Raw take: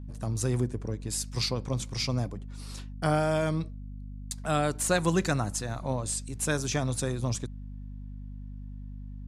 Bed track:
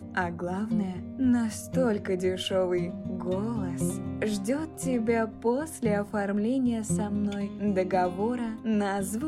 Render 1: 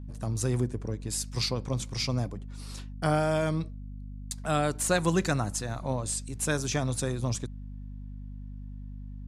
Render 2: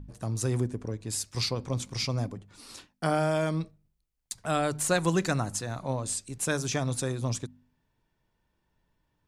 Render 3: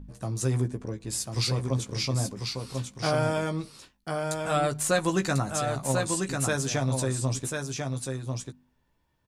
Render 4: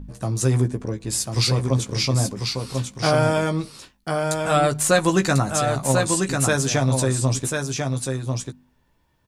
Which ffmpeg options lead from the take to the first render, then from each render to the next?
-af anull
-af "bandreject=f=50:t=h:w=4,bandreject=f=100:t=h:w=4,bandreject=f=150:t=h:w=4,bandreject=f=200:t=h:w=4,bandreject=f=250:t=h:w=4"
-filter_complex "[0:a]asplit=2[s0][s1];[s1]adelay=15,volume=0.501[s2];[s0][s2]amix=inputs=2:normalize=0,asplit=2[s3][s4];[s4]aecho=0:1:1044:0.596[s5];[s3][s5]amix=inputs=2:normalize=0"
-af "volume=2.24"

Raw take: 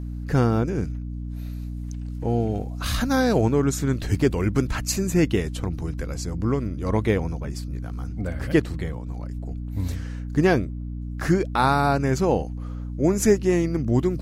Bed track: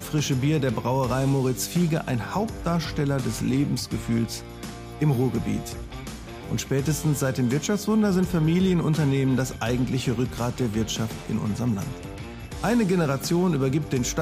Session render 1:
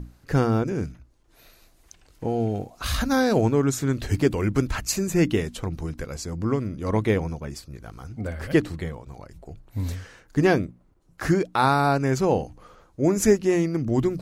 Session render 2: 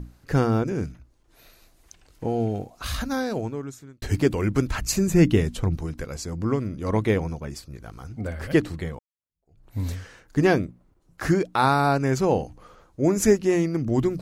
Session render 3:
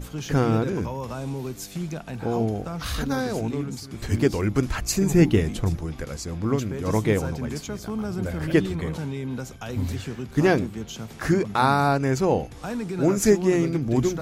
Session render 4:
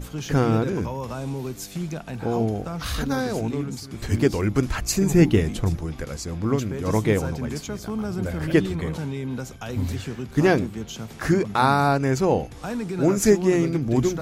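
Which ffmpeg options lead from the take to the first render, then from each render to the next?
-af "bandreject=f=60:t=h:w=6,bandreject=f=120:t=h:w=6,bandreject=f=180:t=h:w=6,bandreject=f=240:t=h:w=6,bandreject=f=300:t=h:w=6"
-filter_complex "[0:a]asettb=1/sr,asplit=3[s0][s1][s2];[s0]atrim=end=4.814[s3];[s1]atrim=start=4.81:end=5.77,asetpts=PTS-STARTPTS,afade=t=in:d=0.004:c=qsin,afade=t=out:st=0.956:d=0.004:c=qsin,lowshelf=f=210:g=8.5[s4];[s2]atrim=start=5.766[s5];[s3][s4]acrossfade=d=0.004:c1=hsin:c2=qsin[s6];[s6][s5]acrossfade=d=0.004:c1=qsin:c2=hsin,asplit=3[s7][s8][s9];[s7]atrim=end=4.02,asetpts=PTS-STARTPTS,afade=t=out:st=2.42:d=1.6[s10];[s8]atrim=start=4.02:end=8.99,asetpts=PTS-STARTPTS,afade=t=in:d=0.004:c=hsin,afade=t=out:st=4.966:d=0.004:c=hsin[s11];[s9]atrim=start=8.99,asetpts=PTS-STARTPTS,afade=t=in:d=0.66:c=exp[s12];[s10][s11][s12]concat=n=3:v=0:a=1"
-filter_complex "[1:a]volume=0.376[s0];[0:a][s0]amix=inputs=2:normalize=0"
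-af "volume=1.12"

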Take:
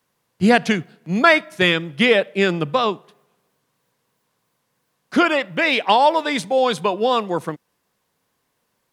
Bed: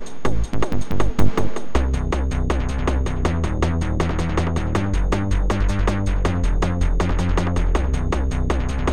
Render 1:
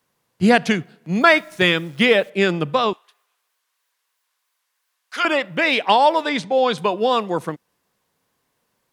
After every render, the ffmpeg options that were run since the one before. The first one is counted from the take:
-filter_complex "[0:a]asettb=1/sr,asplit=3[s0][s1][s2];[s0]atrim=end=1.214[s3];[s1]atrim=start=1.21:end=2.3,asetpts=PTS-STARTPTS,afade=t=in:d=0.004:c=qsin,afade=t=out:st=1.086:d=0.004:c=qsin,acrusher=bits=9:dc=4:mix=0:aa=0.000001[s4];[s2]atrim=start=2.296[s5];[s3][s4]acrossfade=d=0.004:c1=hsin:c2=qsin[s6];[s6][s5]acrossfade=d=0.004:c1=qsin:c2=hsin,asettb=1/sr,asplit=3[s7][s8][s9];[s7]atrim=end=2.934[s10];[s8]atrim=start=2.93:end=5.25,asetpts=PTS-STARTPTS,afade=t=in:d=0.004:c=qsin,afade=t=out:st=2.316:d=0.004:c=qsin,highpass=1300[s11];[s9]atrim=start=5.246[s12];[s10][s11]acrossfade=d=0.004:c1=hsin:c2=qsin[s13];[s13][s12]acrossfade=d=0.004:c1=qsin:c2=hsin,asettb=1/sr,asplit=3[s14][s15][s16];[s14]atrim=end=6.294[s17];[s15]atrim=start=6.29:end=6.78,asetpts=PTS-STARTPTS,afade=t=in:d=0.004:c=qsin,afade=t=out:st=0.486:d=0.004:c=qsin,lowpass=5500[s18];[s16]atrim=start=6.776[s19];[s17][s18]acrossfade=d=0.004:c1=hsin:c2=qsin[s20];[s20][s19]acrossfade=d=0.004:c1=qsin:c2=hsin"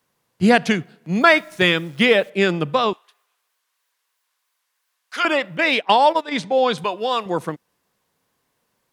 -filter_complex "[0:a]asplit=3[s0][s1][s2];[s0]afade=t=out:st=5.56:d=0.02[s3];[s1]agate=range=0.224:threshold=0.0891:ratio=16:release=100:detection=peak,afade=t=in:st=5.56:d=0.02,afade=t=out:st=6.31:d=0.02[s4];[s2]afade=t=in:st=6.31:d=0.02[s5];[s3][s4][s5]amix=inputs=3:normalize=0,asettb=1/sr,asplit=3[s6][s7][s8];[s6]atrim=end=6.844[s9];[s7]atrim=start=6.84:end=7.26,asetpts=PTS-STARTPTS,afade=t=in:d=0.004:c=qsin,afade=t=out:st=0.416:d=0.004:c=qsin,lowshelf=f=500:g=-10[s10];[s8]atrim=start=7.256[s11];[s9][s10]acrossfade=d=0.004:c1=hsin:c2=qsin[s12];[s12][s11]acrossfade=d=0.004:c1=qsin:c2=hsin"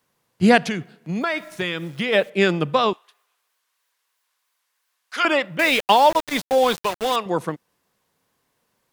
-filter_complex "[0:a]asplit=3[s0][s1][s2];[s0]afade=t=out:st=0.66:d=0.02[s3];[s1]acompressor=threshold=0.0708:ratio=3:attack=3.2:release=140:knee=1:detection=peak,afade=t=in:st=0.66:d=0.02,afade=t=out:st=2.12:d=0.02[s4];[s2]afade=t=in:st=2.12:d=0.02[s5];[s3][s4][s5]amix=inputs=3:normalize=0,asettb=1/sr,asplit=3[s6][s7][s8];[s6]atrim=end=5.594[s9];[s7]atrim=start=5.59:end=7.16,asetpts=PTS-STARTPTS,afade=t=in:d=0.004:c=qsin,afade=t=out:st=1.566:d=0.004:c=qsin,aeval=exprs='val(0)*gte(abs(val(0)),0.0562)':c=same[s10];[s8]atrim=start=7.156[s11];[s9][s10]acrossfade=d=0.004:c1=hsin:c2=qsin[s12];[s12][s11]acrossfade=d=0.004:c1=qsin:c2=hsin"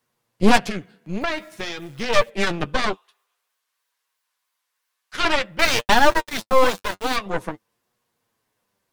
-af "flanger=delay=8.3:depth=2.1:regen=32:speed=0.5:shape=sinusoidal,aeval=exprs='0.473*(cos(1*acos(clip(val(0)/0.473,-1,1)))-cos(1*PI/2))+0.188*(cos(4*acos(clip(val(0)/0.473,-1,1)))-cos(4*PI/2))+0.0422*(cos(8*acos(clip(val(0)/0.473,-1,1)))-cos(8*PI/2))':c=same"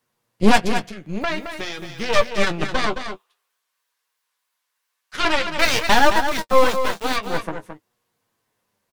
-filter_complex "[0:a]asplit=2[s0][s1];[s1]adelay=19,volume=0.224[s2];[s0][s2]amix=inputs=2:normalize=0,aecho=1:1:218:0.376"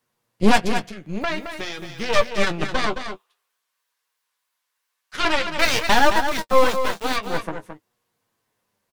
-af "volume=0.891,alimiter=limit=0.708:level=0:latency=1"

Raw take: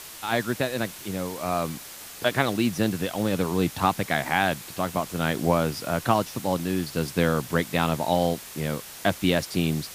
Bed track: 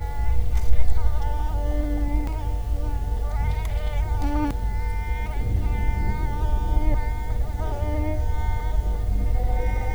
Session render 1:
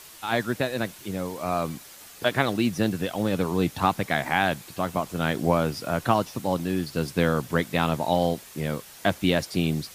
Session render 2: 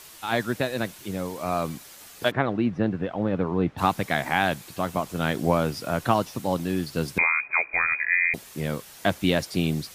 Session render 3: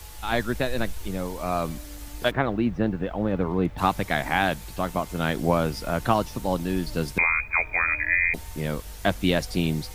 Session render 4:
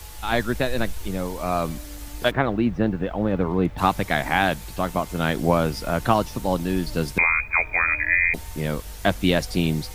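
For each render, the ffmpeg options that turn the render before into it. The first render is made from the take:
-af "afftdn=nr=6:nf=-42"
-filter_complex "[0:a]asplit=3[s0][s1][s2];[s0]afade=t=out:st=2.3:d=0.02[s3];[s1]lowpass=1700,afade=t=in:st=2.3:d=0.02,afade=t=out:st=3.77:d=0.02[s4];[s2]afade=t=in:st=3.77:d=0.02[s5];[s3][s4][s5]amix=inputs=3:normalize=0,asettb=1/sr,asplit=3[s6][s7][s8];[s6]atrim=end=7.184[s9];[s7]atrim=start=7.18:end=8.34,asetpts=PTS-STARTPTS,afade=t=in:d=0.004:c=qsin,afade=t=out:st=1.156:d=0.004:c=qsin,lowpass=f=2200:t=q:w=0.5098,lowpass=f=2200:t=q:w=0.6013,lowpass=f=2200:t=q:w=0.9,lowpass=f=2200:t=q:w=2.563,afreqshift=-2600[s10];[s8]atrim=start=8.336[s11];[s9][s10]acrossfade=d=0.004:c1=hsin:c2=qsin[s12];[s12][s11]acrossfade=d=0.004:c1=qsin:c2=hsin"
-filter_complex "[1:a]volume=0.15[s0];[0:a][s0]amix=inputs=2:normalize=0"
-af "volume=1.33"

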